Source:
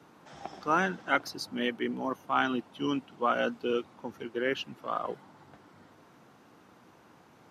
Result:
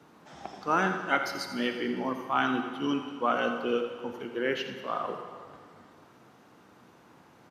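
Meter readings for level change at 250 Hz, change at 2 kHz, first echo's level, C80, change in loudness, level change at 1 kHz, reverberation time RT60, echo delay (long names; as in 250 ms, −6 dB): +1.5 dB, +1.5 dB, −12.0 dB, 6.5 dB, +1.0 dB, +1.5 dB, 2.0 s, 85 ms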